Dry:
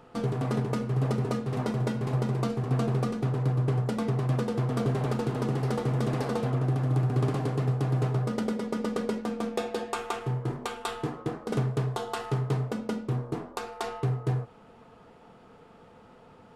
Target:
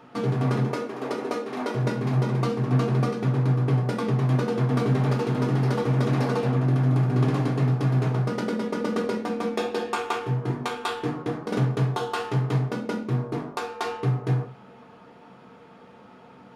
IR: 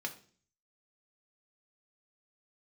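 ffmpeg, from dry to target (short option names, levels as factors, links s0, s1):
-filter_complex "[0:a]asettb=1/sr,asplit=3[s0][s1][s2];[s0]atrim=end=0.664[s3];[s1]atrim=start=0.66:end=1.75,asetpts=PTS-STARTPTS,afade=t=in:d=0.004:c=qsin,afade=t=out:st=1.086:d=0.004:c=qsin,highpass=f=280:w=0.5412,highpass=f=280:w=1.3066[s4];[s2]atrim=start=1.746[s5];[s3][s4]acrossfade=d=0.004:c1=hsin:c2=qsin[s6];[s6][s5]acrossfade=d=0.004:c1=qsin:c2=hsin[s7];[1:a]atrim=start_sample=2205,afade=t=out:st=0.23:d=0.01,atrim=end_sample=10584[s8];[s7][s8]afir=irnorm=-1:irlink=0,volume=1.58"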